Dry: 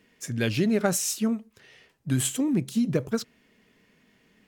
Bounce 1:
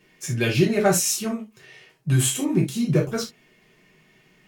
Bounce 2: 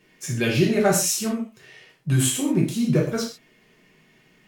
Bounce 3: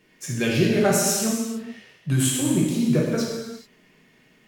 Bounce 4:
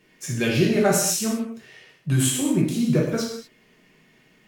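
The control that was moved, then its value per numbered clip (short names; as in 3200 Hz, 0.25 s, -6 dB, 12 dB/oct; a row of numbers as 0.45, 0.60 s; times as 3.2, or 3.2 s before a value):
non-linear reverb, gate: 0.1, 0.17, 0.46, 0.27 s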